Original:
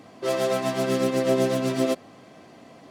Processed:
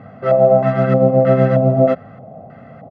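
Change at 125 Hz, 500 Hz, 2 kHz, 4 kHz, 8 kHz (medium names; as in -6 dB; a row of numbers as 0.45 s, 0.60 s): +17.0 dB, +11.0 dB, +3.5 dB, under -10 dB, under -25 dB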